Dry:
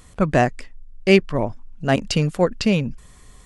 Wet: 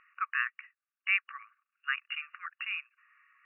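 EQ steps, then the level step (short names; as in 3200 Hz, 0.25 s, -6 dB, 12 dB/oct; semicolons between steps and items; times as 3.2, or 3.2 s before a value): brick-wall FIR band-pass 1100–2900 Hz; air absorption 210 m; -2.0 dB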